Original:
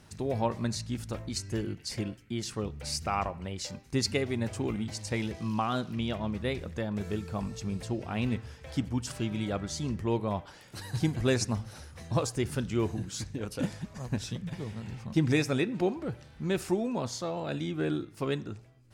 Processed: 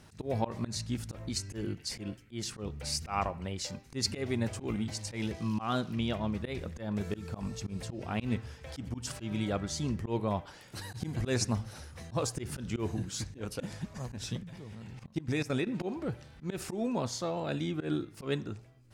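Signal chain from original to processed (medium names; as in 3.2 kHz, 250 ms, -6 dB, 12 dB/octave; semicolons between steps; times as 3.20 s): slow attack 116 ms; 14.43–15.67 s: level held to a coarse grid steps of 15 dB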